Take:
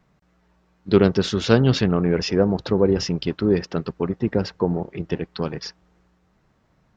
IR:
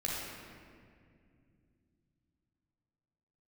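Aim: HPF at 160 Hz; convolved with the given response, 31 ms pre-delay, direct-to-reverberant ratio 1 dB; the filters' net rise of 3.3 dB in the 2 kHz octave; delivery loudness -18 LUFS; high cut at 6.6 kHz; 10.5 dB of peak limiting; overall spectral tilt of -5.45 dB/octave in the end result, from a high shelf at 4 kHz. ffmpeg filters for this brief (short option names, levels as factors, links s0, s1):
-filter_complex "[0:a]highpass=160,lowpass=6600,equalizer=f=2000:t=o:g=5.5,highshelf=f=4000:g=-3.5,alimiter=limit=0.251:level=0:latency=1,asplit=2[s0][s1];[1:a]atrim=start_sample=2205,adelay=31[s2];[s1][s2]afir=irnorm=-1:irlink=0,volume=0.501[s3];[s0][s3]amix=inputs=2:normalize=0,volume=1.68"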